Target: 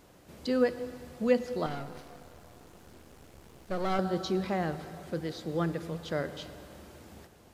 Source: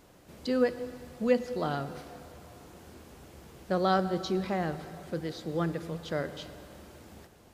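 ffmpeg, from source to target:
-filter_complex "[0:a]asettb=1/sr,asplit=3[a][b][c];[a]atrim=end=1.664[d];[b]atrim=start=1.66:end=3.99,asetpts=PTS-STARTPTS,afade=t=in:d=0.004:c=qsin,afade=t=out:st=2.326:d=0.004:c=qsin,aeval=exprs='if(lt(val(0),0),0.251*val(0),val(0))':c=same[e];[c]atrim=start=3.986[f];[d][e]acrossfade=d=0.004:c1=hsin:c2=qsin[g];[g][f]acrossfade=d=0.004:c1=qsin:c2=hsin"

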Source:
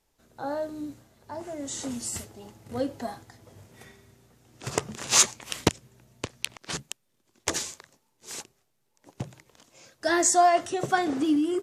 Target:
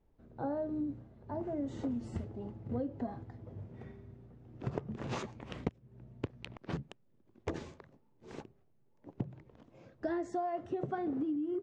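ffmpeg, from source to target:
-af "tiltshelf=f=740:g=9.5,acompressor=threshold=-29dB:ratio=16,lowpass=2.7k,volume=-3dB"

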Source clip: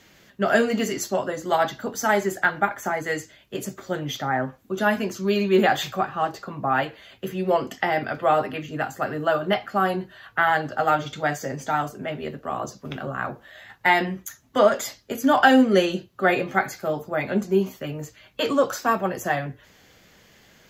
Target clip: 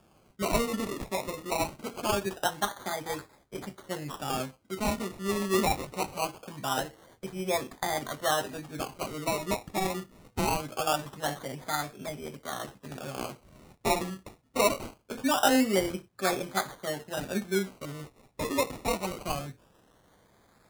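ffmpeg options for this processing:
-af "acrusher=samples=22:mix=1:aa=0.000001:lfo=1:lforange=13.2:lforate=0.23,equalizer=f=9.7k:t=o:w=1.1:g=3,volume=-8dB"

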